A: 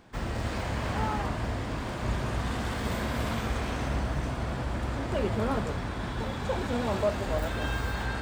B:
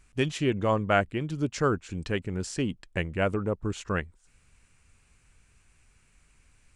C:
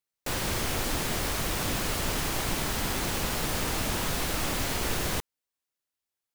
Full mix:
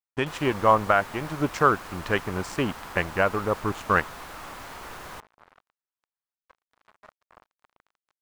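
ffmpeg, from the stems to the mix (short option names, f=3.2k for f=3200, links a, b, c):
-filter_complex "[0:a]aeval=exprs='0.168*(cos(1*acos(clip(val(0)/0.168,-1,1)))-cos(1*PI/2))+0.00422*(cos(2*acos(clip(val(0)/0.168,-1,1)))-cos(2*PI/2))+0.0015*(cos(3*acos(clip(val(0)/0.168,-1,1)))-cos(3*PI/2))+0.00531*(cos(7*acos(clip(val(0)/0.168,-1,1)))-cos(7*PI/2))+0.0075*(cos(8*acos(clip(val(0)/0.168,-1,1)))-cos(8*PI/2))':c=same,flanger=delay=1.4:depth=5.9:regen=-49:speed=1.1:shape=triangular,volume=-15.5dB[a];[1:a]agate=range=-13dB:threshold=-50dB:ratio=16:detection=peak,volume=1dB[b];[2:a]volume=-16.5dB[c];[a][b]amix=inputs=2:normalize=0,aeval=exprs='sgn(val(0))*max(abs(val(0))-0.00891,0)':c=same,alimiter=limit=-16.5dB:level=0:latency=1:release=448,volume=0dB[d];[c][d]amix=inputs=2:normalize=0,equalizer=f=1.1k:t=o:w=1.9:g=13.5"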